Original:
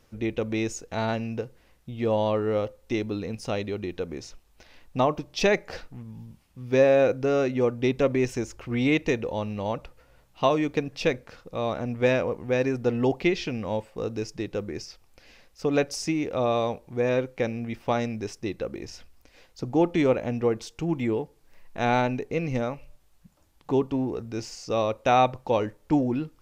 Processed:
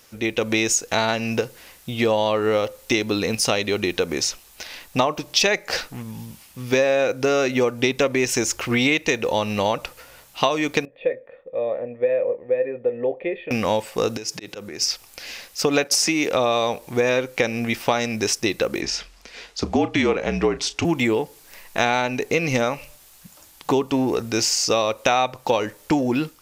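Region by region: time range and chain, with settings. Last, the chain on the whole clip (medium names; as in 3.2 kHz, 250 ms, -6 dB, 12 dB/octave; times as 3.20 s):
10.85–13.51 s: cascade formant filter e + high-order bell 2 kHz -8 dB 1.1 oct + doubling 25 ms -12 dB
14.17–14.82 s: high-pass 88 Hz + slow attack 204 ms + compression 12:1, threshold -41 dBFS
15.84–16.30 s: high-pass 150 Hz + expander -40 dBFS + three bands compressed up and down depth 40%
18.81–20.85 s: frequency shift -50 Hz + distance through air 79 m + doubling 33 ms -14 dB
whole clip: level rider gain up to 7 dB; tilt EQ +3 dB/octave; compression 5:1, threshold -25 dBFS; trim +8 dB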